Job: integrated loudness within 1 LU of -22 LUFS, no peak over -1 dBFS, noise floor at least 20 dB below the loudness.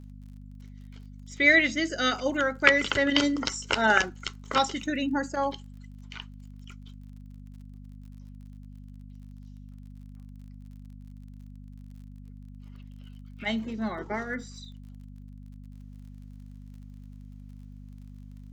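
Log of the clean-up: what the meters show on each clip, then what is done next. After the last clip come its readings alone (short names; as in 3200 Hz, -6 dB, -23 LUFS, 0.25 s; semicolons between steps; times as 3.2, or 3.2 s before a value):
ticks 39/s; hum 50 Hz; harmonics up to 250 Hz; hum level -42 dBFS; loudness -25.5 LUFS; peak -3.0 dBFS; loudness target -22.0 LUFS
-> de-click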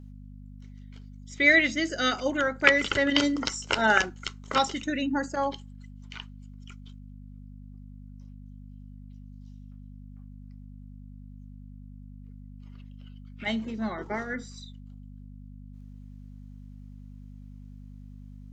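ticks 0.11/s; hum 50 Hz; harmonics up to 250 Hz; hum level -42 dBFS
-> de-hum 50 Hz, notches 5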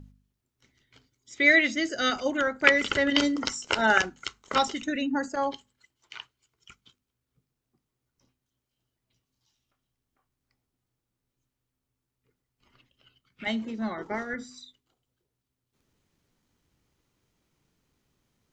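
hum none; loudness -25.5 LUFS; peak -3.0 dBFS; loudness target -22.0 LUFS
-> gain +3.5 dB; limiter -1 dBFS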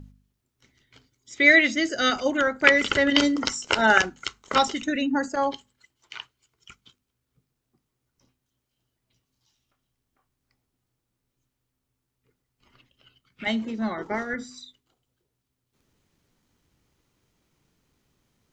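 loudness -22.0 LUFS; peak -1.0 dBFS; noise floor -81 dBFS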